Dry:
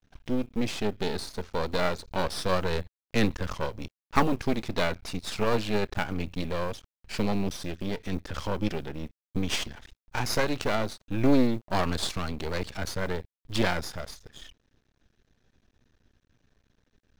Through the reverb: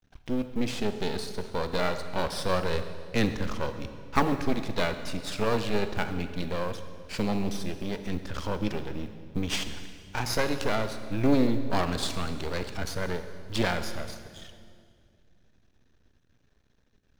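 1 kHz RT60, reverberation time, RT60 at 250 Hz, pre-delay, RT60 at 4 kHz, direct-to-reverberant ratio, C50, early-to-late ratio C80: 2.0 s, 2.1 s, 2.7 s, 29 ms, 1.7 s, 9.0 dB, 9.5 dB, 10.5 dB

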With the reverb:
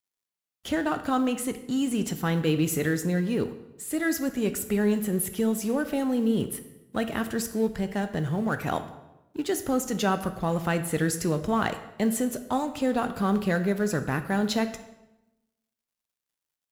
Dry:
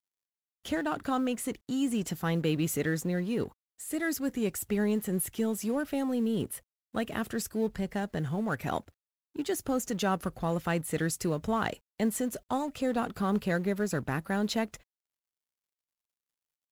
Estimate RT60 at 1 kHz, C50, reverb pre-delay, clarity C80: 0.90 s, 11.5 dB, 12 ms, 14.0 dB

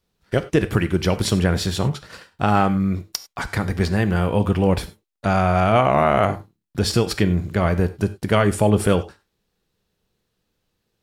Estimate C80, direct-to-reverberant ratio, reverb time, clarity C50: 20.0 dB, 11.5 dB, non-exponential decay, 15.5 dB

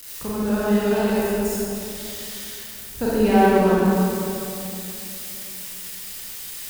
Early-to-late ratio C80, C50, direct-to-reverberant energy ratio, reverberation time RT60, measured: −3.0 dB, −5.5 dB, −9.0 dB, 2.8 s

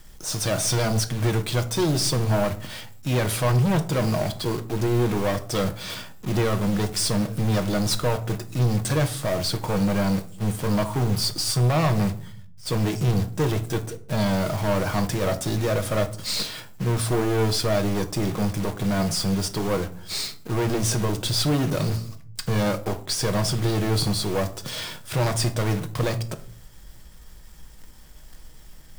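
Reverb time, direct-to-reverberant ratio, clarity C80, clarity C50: 0.50 s, 6.5 dB, 19.5 dB, 15.5 dB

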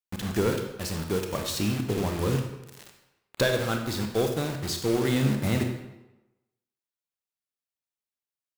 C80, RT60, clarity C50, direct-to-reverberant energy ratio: 8.5 dB, 1.0 s, 6.0 dB, 4.0 dB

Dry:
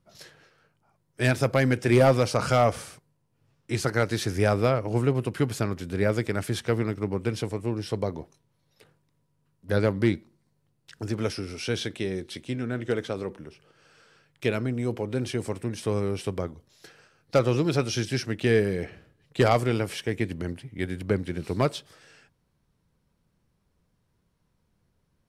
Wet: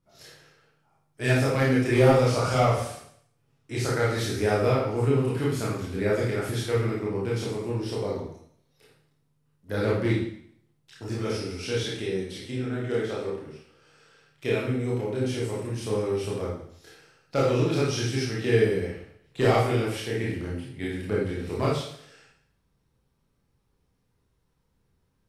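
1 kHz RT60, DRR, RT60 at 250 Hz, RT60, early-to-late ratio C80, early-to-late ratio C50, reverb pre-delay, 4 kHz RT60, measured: 0.65 s, −6.0 dB, 0.65 s, 0.65 s, 5.5 dB, 1.0 dB, 23 ms, 0.65 s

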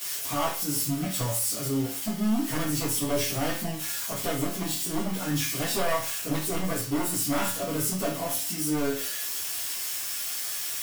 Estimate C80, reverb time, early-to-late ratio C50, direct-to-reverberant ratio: 10.0 dB, 0.40 s, 5.5 dB, −11.5 dB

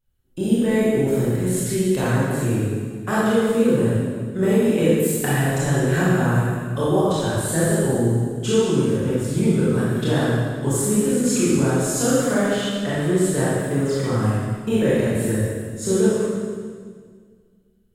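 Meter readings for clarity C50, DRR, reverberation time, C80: −4.0 dB, −9.5 dB, 1.8 s, −1.0 dB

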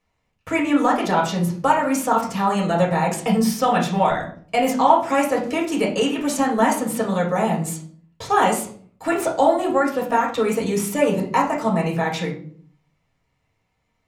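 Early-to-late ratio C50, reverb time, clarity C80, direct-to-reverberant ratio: 7.5 dB, 0.50 s, 12.5 dB, −3.5 dB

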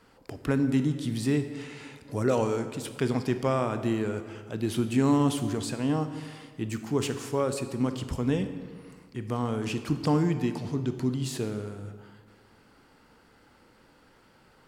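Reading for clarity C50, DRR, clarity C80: 10.0 dB, 9.0 dB, 11.5 dB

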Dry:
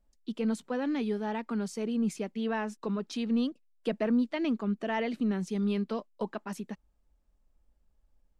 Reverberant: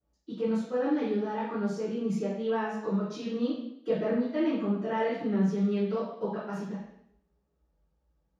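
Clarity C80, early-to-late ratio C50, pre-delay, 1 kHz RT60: 5.0 dB, 1.0 dB, 3 ms, 0.70 s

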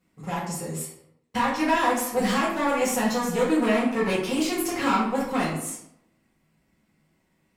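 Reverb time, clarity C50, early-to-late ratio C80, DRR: 0.75 s, 3.0 dB, 7.0 dB, −8.0 dB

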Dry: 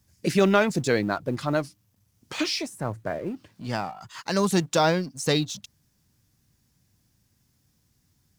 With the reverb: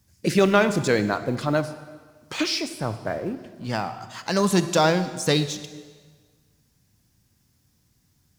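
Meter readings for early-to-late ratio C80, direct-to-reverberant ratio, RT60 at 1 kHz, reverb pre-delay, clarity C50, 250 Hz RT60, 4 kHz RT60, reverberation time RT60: 13.5 dB, 11.0 dB, 1.5 s, 27 ms, 12.0 dB, 1.6 s, 1.4 s, 1.5 s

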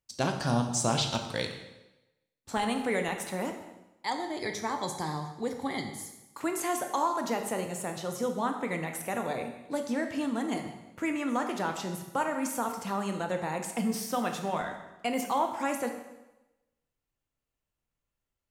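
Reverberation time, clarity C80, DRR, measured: 1.0 s, 9.0 dB, 4.5 dB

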